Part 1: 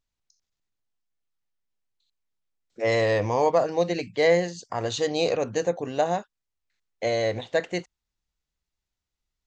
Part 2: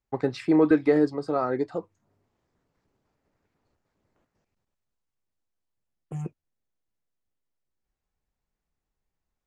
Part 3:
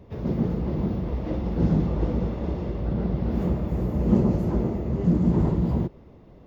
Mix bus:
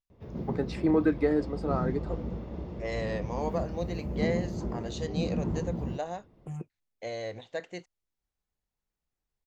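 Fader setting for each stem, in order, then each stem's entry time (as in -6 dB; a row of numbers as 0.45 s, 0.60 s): -11.5 dB, -5.0 dB, -10.0 dB; 0.00 s, 0.35 s, 0.10 s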